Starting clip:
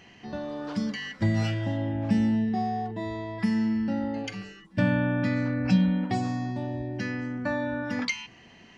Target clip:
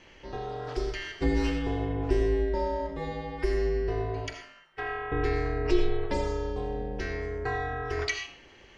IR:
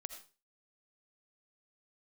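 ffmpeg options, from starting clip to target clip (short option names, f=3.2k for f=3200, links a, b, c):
-filter_complex "[0:a]asettb=1/sr,asplit=3[a][b][c];[a]atrim=end=4.334[d];[b]atrim=start=4.33:end=5.12,asetpts=PTS-STARTPTS,afade=t=in:d=0.004:c=qsin,afade=t=out:st=0.786:d=0.004:c=qsin,acrossover=split=560 2600:gain=0.0708 1 0.251[e][f][g];[e][f][g]amix=inputs=3:normalize=0[h];[c]atrim=start=5.116[i];[d][h]acrossfade=d=0.004:c1=hsin:c2=qsin[j];[j][i]acrossfade=d=0.004:c1=qsin:c2=hsin,aeval=exprs='val(0)*sin(2*PI*170*n/s)':c=same[k];[1:a]atrim=start_sample=2205[l];[k][l]afir=irnorm=-1:irlink=0,volume=5.5dB"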